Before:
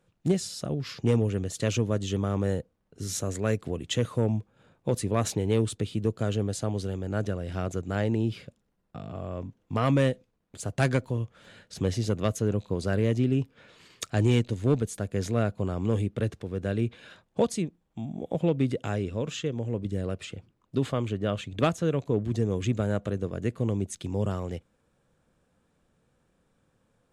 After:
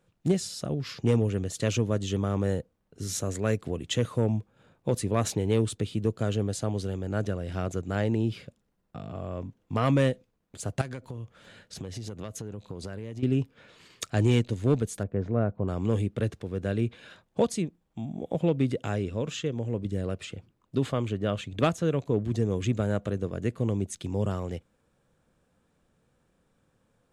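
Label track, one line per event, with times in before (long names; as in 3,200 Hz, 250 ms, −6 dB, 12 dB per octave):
10.810000	13.230000	downward compressor 8 to 1, threshold −33 dBFS
15.030000	15.680000	low-pass filter 1,200 Hz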